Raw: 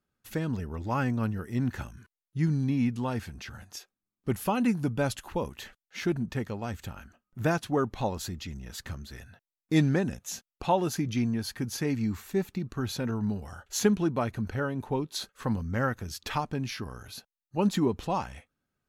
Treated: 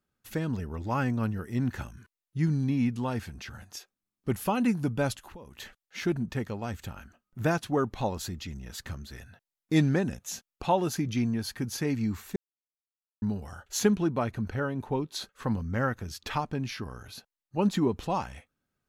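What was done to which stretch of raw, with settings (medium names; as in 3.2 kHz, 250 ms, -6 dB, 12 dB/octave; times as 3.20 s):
5.14–5.60 s: compression 5:1, threshold -44 dBFS
12.36–13.22 s: mute
13.96–17.92 s: treble shelf 6.1 kHz -4.5 dB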